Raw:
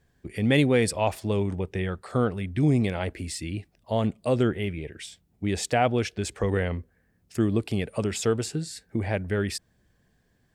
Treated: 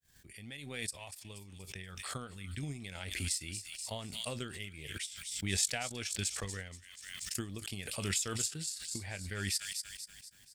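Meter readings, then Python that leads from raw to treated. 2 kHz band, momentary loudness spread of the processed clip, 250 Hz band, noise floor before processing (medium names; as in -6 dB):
-8.0 dB, 14 LU, -18.5 dB, -68 dBFS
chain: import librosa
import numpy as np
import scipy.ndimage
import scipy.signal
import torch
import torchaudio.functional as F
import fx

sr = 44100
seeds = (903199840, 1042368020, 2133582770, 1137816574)

p1 = fx.fade_in_head(x, sr, length_s=2.97)
p2 = fx.tone_stack(p1, sr, knobs='5-5-5')
p3 = fx.doubler(p2, sr, ms=21.0, db=-12.5)
p4 = p3 + fx.echo_wet_highpass(p3, sr, ms=239, feedback_pct=47, hz=3600.0, wet_db=-6.0, dry=0)
p5 = fx.transient(p4, sr, attack_db=9, sustain_db=-10)
p6 = fx.high_shelf(p5, sr, hz=3900.0, db=9.5)
p7 = fx.pre_swell(p6, sr, db_per_s=37.0)
y = p7 * librosa.db_to_amplitude(-5.0)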